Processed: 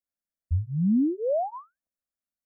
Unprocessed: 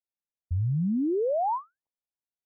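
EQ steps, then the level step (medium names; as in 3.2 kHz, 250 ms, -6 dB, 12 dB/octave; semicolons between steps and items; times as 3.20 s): peaking EQ 87 Hz +6.5 dB 0.85 oct; bass shelf 440 Hz +6.5 dB; static phaser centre 600 Hz, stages 8; 0.0 dB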